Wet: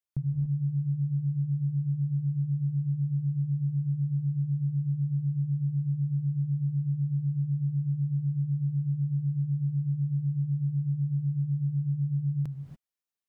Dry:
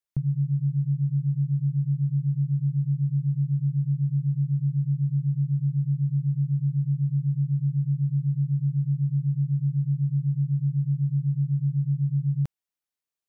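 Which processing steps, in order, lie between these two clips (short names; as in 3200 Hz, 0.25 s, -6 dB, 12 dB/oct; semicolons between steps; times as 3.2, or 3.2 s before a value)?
non-linear reverb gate 0.31 s rising, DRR 5 dB; gain -4.5 dB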